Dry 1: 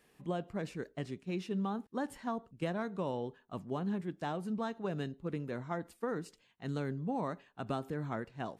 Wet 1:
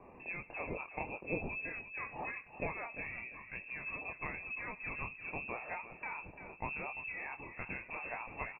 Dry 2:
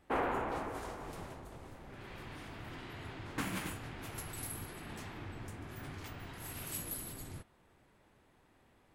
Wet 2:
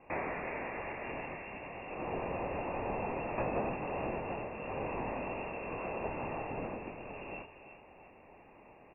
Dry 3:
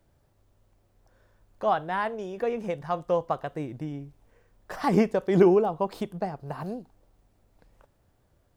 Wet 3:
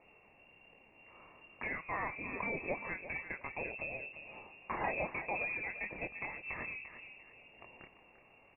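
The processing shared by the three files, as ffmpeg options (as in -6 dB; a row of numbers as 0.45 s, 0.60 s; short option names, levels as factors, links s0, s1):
-filter_complex "[0:a]tiltshelf=f=920:g=-3.5,acompressor=threshold=0.00562:ratio=3,flanger=delay=20:depth=8:speed=2.6,asoftclip=type=tanh:threshold=0.015,aexciter=amount=14.7:drive=8.1:freq=2200,asplit=2[s0][s1];[s1]adelay=345,lowpass=f=1900:p=1,volume=0.335,asplit=2[s2][s3];[s3]adelay=345,lowpass=f=1900:p=1,volume=0.38,asplit=2[s4][s5];[s5]adelay=345,lowpass=f=1900:p=1,volume=0.38,asplit=2[s6][s7];[s7]adelay=345,lowpass=f=1900:p=1,volume=0.38[s8];[s2][s4][s6][s8]amix=inputs=4:normalize=0[s9];[s0][s9]amix=inputs=2:normalize=0,lowpass=f=2400:t=q:w=0.5098,lowpass=f=2400:t=q:w=0.6013,lowpass=f=2400:t=q:w=0.9,lowpass=f=2400:t=q:w=2.563,afreqshift=-2800,volume=1.78"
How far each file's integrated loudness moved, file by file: -3.0 LU, +4.0 LU, -12.5 LU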